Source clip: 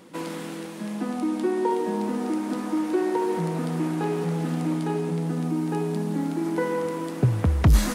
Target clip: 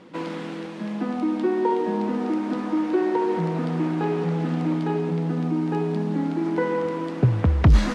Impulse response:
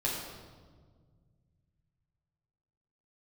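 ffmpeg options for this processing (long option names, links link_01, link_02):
-af "lowpass=4000,volume=2dB"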